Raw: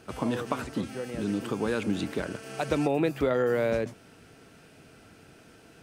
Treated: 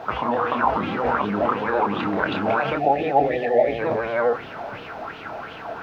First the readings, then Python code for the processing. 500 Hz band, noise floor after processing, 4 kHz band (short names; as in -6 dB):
+7.0 dB, -37 dBFS, +5.5 dB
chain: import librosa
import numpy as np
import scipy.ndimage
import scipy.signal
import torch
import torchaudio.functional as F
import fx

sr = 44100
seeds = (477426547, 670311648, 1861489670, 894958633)

p1 = fx.reverse_delay(x, sr, ms=433, wet_db=-0.5)
p2 = fx.spec_erase(p1, sr, start_s=2.74, length_s=1.05, low_hz=850.0, high_hz=1700.0)
p3 = fx.peak_eq(p2, sr, hz=970.0, db=15.0, octaves=1.6)
p4 = fx.over_compress(p3, sr, threshold_db=-31.0, ratio=-1.0)
p5 = p3 + F.gain(torch.from_numpy(p4), 2.5).numpy()
p6 = fx.quant_dither(p5, sr, seeds[0], bits=6, dither='triangular')
p7 = fx.air_absorb(p6, sr, metres=290.0)
p8 = fx.doubler(p7, sr, ms=29.0, db=-5.0)
p9 = p8 + fx.echo_single(p8, sr, ms=524, db=-21.0, dry=0)
p10 = fx.vibrato(p9, sr, rate_hz=12.0, depth_cents=48.0)
p11 = fx.bell_lfo(p10, sr, hz=2.8, low_hz=650.0, high_hz=3200.0, db=13)
y = F.gain(torch.from_numpy(p11), -7.5).numpy()